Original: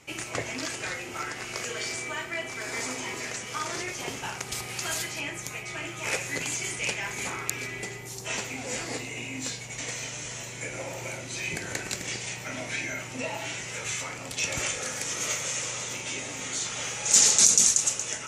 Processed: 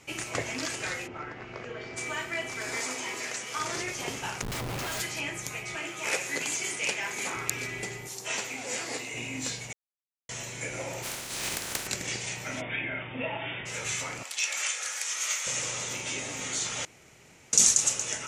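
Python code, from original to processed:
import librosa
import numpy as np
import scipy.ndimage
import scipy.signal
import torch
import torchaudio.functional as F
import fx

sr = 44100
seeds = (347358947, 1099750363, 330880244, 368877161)

y = fx.spacing_loss(x, sr, db_at_10k=38, at=(1.06, 1.96), fade=0.02)
y = fx.highpass(y, sr, hz=330.0, slope=6, at=(2.77, 3.59))
y = fx.schmitt(y, sr, flips_db=-33.0, at=(4.42, 5.0))
y = fx.highpass(y, sr, hz=220.0, slope=12, at=(5.75, 7.35))
y = fx.highpass(y, sr, hz=360.0, slope=6, at=(8.07, 9.14))
y = fx.spec_flatten(y, sr, power=0.26, at=(11.02, 11.86), fade=0.02)
y = fx.brickwall_lowpass(y, sr, high_hz=3700.0, at=(12.6, 13.65), fade=0.02)
y = fx.highpass(y, sr, hz=1100.0, slope=12, at=(14.23, 15.47))
y = fx.edit(y, sr, fx.silence(start_s=9.73, length_s=0.56),
    fx.room_tone_fill(start_s=16.85, length_s=0.68), tone=tone)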